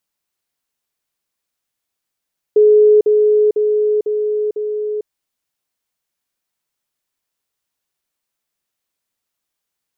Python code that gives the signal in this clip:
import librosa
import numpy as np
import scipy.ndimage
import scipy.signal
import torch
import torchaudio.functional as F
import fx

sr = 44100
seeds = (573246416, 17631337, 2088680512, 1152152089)

y = fx.level_ladder(sr, hz=423.0, from_db=-6.0, step_db=-3.0, steps=5, dwell_s=0.45, gap_s=0.05)